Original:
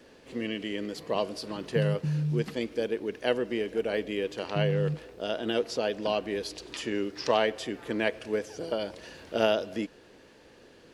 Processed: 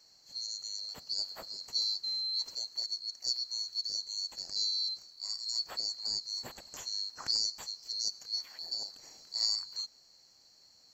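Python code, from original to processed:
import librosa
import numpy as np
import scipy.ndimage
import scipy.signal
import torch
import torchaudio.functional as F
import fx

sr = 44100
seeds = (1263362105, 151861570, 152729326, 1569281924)

y = fx.band_swap(x, sr, width_hz=4000)
y = y * librosa.db_to_amplitude(-7.0)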